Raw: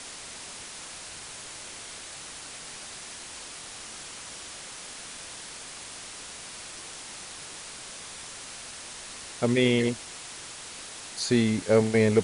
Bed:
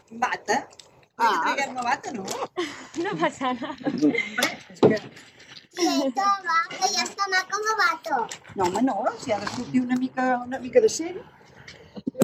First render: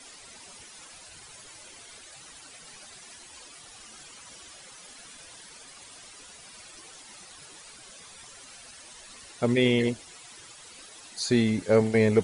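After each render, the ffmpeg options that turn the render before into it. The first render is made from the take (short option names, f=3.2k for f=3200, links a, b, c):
-af "afftdn=nr=12:nf=-42"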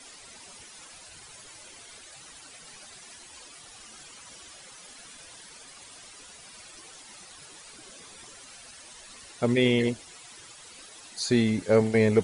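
-filter_complex "[0:a]asettb=1/sr,asplit=3[a][b][c];[a]atrim=end=7.734[d];[b]atrim=start=7.73:end=8.36,asetpts=PTS-STARTPTS,afade=t=in:d=0.004:c=qsin,afade=t=out:st=0.626:d=0.004:c=qsin,equalizer=f=320:w=1.5:g=8[e];[c]atrim=start=8.356[f];[d][e]acrossfade=d=0.004:c1=hsin:c2=qsin[g];[g][f]acrossfade=d=0.004:c1=qsin:c2=hsin"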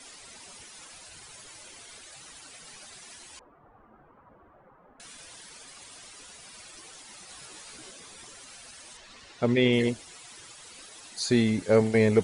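-filter_complex "[0:a]asettb=1/sr,asplit=3[a][b][c];[a]atrim=end=3.394[d];[b]atrim=start=3.39:end=5,asetpts=PTS-STARTPTS,afade=t=in:d=0.004:c=qsin,afade=t=out:st=1.606:d=0.004:c=qsin,lowpass=f=1.2k:w=0.5412,lowpass=f=1.2k:w=1.3066[e];[c]atrim=start=4.996[f];[d][e]acrossfade=d=0.004:c1=hsin:c2=qsin[g];[g][f]acrossfade=d=0.004:c1=qsin:c2=hsin,asettb=1/sr,asplit=3[h][i][j];[h]atrim=end=7.274[k];[i]atrim=start=7.27:end=7.91,asetpts=PTS-STARTPTS,afade=t=in:d=0.004:c=qsin,afade=t=out:st=0.636:d=0.004:c=qsin,asplit=2[l][m];[m]adelay=16,volume=-3dB[n];[l][n]amix=inputs=2:normalize=0,atrim=end_sample=28224[o];[j]atrim=start=7.906[p];[k][o]acrossfade=d=0.004:c1=hsin:c2=qsin[q];[q][p]acrossfade=d=0.004:c1=qsin:c2=hsin,asettb=1/sr,asplit=3[r][s][t];[r]atrim=end=8.974[u];[s]atrim=start=8.97:end=9.73,asetpts=PTS-STARTPTS,afade=t=in:d=0.004:c=qsin,afade=t=out:st=0.756:d=0.004:c=qsin,lowpass=5.1k[v];[t]atrim=start=9.726[w];[u][v]acrossfade=d=0.004:c1=hsin:c2=qsin[x];[x][w]acrossfade=d=0.004:c1=qsin:c2=hsin"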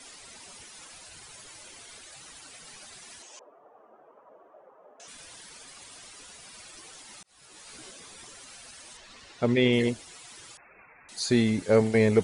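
-filter_complex "[0:a]asettb=1/sr,asplit=3[a][b][c];[a]atrim=end=3.224[d];[b]atrim=start=3.22:end=5.08,asetpts=PTS-STARTPTS,afade=t=in:d=0.004:c=qsin,afade=t=out:st=1.856:d=0.004:c=qsin,highpass=380,equalizer=f=430:t=q:w=4:g=7,equalizer=f=620:t=q:w=4:g=9,equalizer=f=1.5k:t=q:w=4:g=-4,equalizer=f=2.1k:t=q:w=4:g=-5,equalizer=f=4.2k:t=q:w=4:g=-6,equalizer=f=6.2k:t=q:w=4:g=6,lowpass=f=7.7k:w=0.5412,lowpass=f=7.7k:w=1.3066[e];[c]atrim=start=5.076[f];[d][e]acrossfade=d=0.004:c1=hsin:c2=qsin[g];[g][f]acrossfade=d=0.004:c1=qsin:c2=hsin,asettb=1/sr,asplit=3[h][i][j];[h]atrim=end=10.574[k];[i]atrim=start=10.57:end=11.09,asetpts=PTS-STARTPTS,afade=t=in:d=0.004:c=qsin,afade=t=out:st=0.516:d=0.004:c=qsin,lowpass=f=2.3k:t=q:w=0.5098,lowpass=f=2.3k:t=q:w=0.6013,lowpass=f=2.3k:t=q:w=0.9,lowpass=f=2.3k:t=q:w=2.563,afreqshift=-2700[l];[j]atrim=start=11.086[m];[k][l]acrossfade=d=0.004:c1=hsin:c2=qsin[n];[n][m]acrossfade=d=0.004:c1=qsin:c2=hsin,asplit=2[o][p];[o]atrim=end=7.23,asetpts=PTS-STARTPTS,afade=t=out:st=7.226:d=0.004:c=hsin[q];[p]atrim=start=7.23,asetpts=PTS-STARTPTS,afade=t=in:d=0.54[r];[q][r]concat=n=2:v=0:a=1"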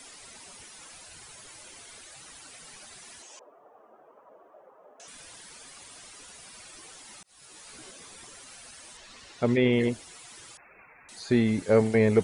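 -filter_complex "[0:a]acrossover=split=2700[a][b];[b]acompressor=threshold=-48dB:ratio=4:attack=1:release=60[c];[a][c]amix=inputs=2:normalize=0,highshelf=f=6.6k:g=6"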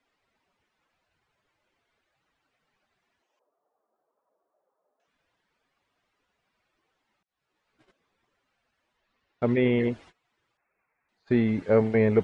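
-af "lowpass=2.5k,agate=range=-23dB:threshold=-47dB:ratio=16:detection=peak"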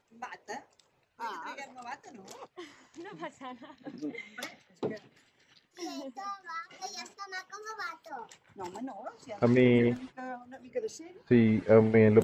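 -filter_complex "[1:a]volume=-17.5dB[a];[0:a][a]amix=inputs=2:normalize=0"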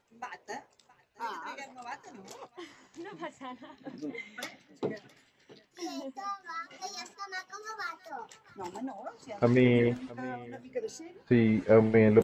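-filter_complex "[0:a]asplit=2[a][b];[b]adelay=15,volume=-10.5dB[c];[a][c]amix=inputs=2:normalize=0,aecho=1:1:667:0.0841"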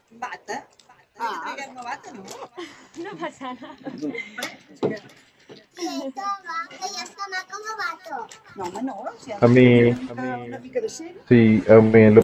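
-af "volume=10dB,alimiter=limit=-1dB:level=0:latency=1"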